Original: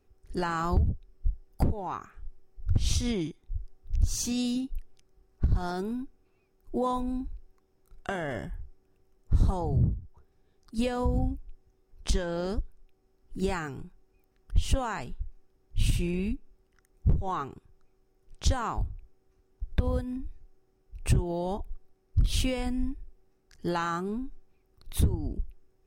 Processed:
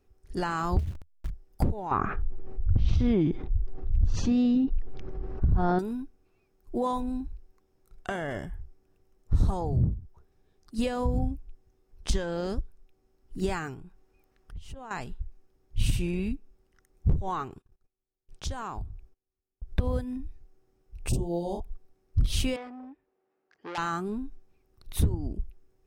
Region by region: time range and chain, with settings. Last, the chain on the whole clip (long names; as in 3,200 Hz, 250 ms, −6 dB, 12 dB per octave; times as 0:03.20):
0:00.79–0:01.30: hold until the input has moved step −37 dBFS + parametric band 80 Hz +8 dB 0.61 octaves + downward compressor 16 to 1, threshold −27 dBFS
0:01.91–0:05.79: head-to-tape spacing loss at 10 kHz 43 dB + envelope flattener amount 70%
0:13.74–0:14.91: high-shelf EQ 2,200 Hz −9 dB + downward compressor 3 to 1, threshold −42 dBFS + one half of a high-frequency compander encoder only
0:17.50–0:19.70: notch filter 2,000 Hz, Q 18 + noise gate −56 dBFS, range −23 dB + downward compressor 2 to 1, threshold −35 dBFS
0:21.09–0:21.60: Butterworth band-reject 1,700 Hz, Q 0.54 + parametric band 74 Hz −6.5 dB 2.3 octaves + double-tracking delay 41 ms −3.5 dB
0:22.56–0:23.78: band-pass filter 400–2,200 Hz + saturating transformer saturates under 3,000 Hz
whole clip: no processing